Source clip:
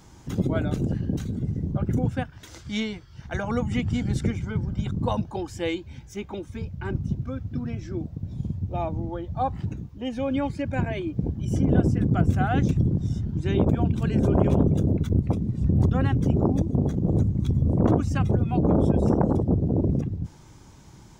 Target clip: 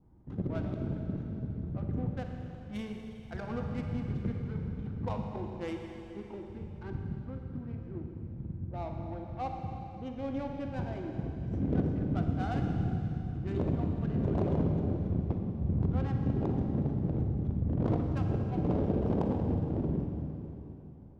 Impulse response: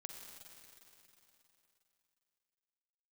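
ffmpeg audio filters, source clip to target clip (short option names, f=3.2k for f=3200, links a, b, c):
-filter_complex "[0:a]adynamicsmooth=sensitivity=2.5:basefreq=570,adynamicequalizer=threshold=0.00398:dfrequency=1800:dqfactor=2.2:tfrequency=1800:tqfactor=2.2:attack=5:release=100:ratio=0.375:range=1.5:mode=cutabove:tftype=bell[a];[1:a]atrim=start_sample=2205[b];[a][b]afir=irnorm=-1:irlink=0,volume=-4.5dB"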